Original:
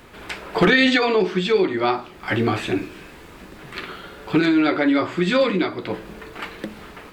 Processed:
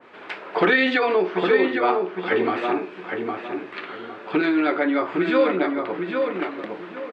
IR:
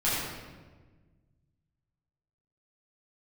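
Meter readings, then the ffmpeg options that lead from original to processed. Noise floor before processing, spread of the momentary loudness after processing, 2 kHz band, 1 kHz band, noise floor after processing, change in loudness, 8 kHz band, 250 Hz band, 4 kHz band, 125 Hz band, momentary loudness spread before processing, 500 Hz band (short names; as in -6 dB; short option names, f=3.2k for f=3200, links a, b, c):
-43 dBFS, 15 LU, -1.0 dB, +1.0 dB, -41 dBFS, -2.5 dB, n/a, -3.0 dB, -6.5 dB, -11.0 dB, 19 LU, +0.5 dB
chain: -filter_complex "[0:a]highpass=330,lowpass=2.8k,asplit=2[a][b];[b]adelay=809,lowpass=f=2.1k:p=1,volume=-4dB,asplit=2[c][d];[d]adelay=809,lowpass=f=2.1k:p=1,volume=0.31,asplit=2[e][f];[f]adelay=809,lowpass=f=2.1k:p=1,volume=0.31,asplit=2[g][h];[h]adelay=809,lowpass=f=2.1k:p=1,volume=0.31[i];[a][c][e][g][i]amix=inputs=5:normalize=0,adynamicequalizer=threshold=0.0224:dfrequency=2000:dqfactor=0.7:tfrequency=2000:tqfactor=0.7:attack=5:release=100:ratio=0.375:range=2:mode=cutabove:tftype=highshelf"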